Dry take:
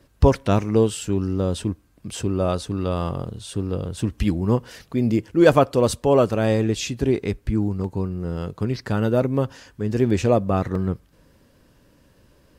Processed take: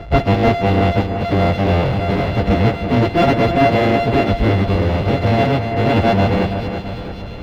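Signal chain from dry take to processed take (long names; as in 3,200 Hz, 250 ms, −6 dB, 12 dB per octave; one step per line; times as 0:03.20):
samples sorted by size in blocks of 64 samples
parametric band 1,300 Hz −9 dB 0.82 octaves
time stretch by phase vocoder 0.59×
power curve on the samples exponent 0.5
high-frequency loss of the air 340 metres
echo with a time of its own for lows and highs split 2,600 Hz, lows 334 ms, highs 544 ms, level −8 dB
level +3 dB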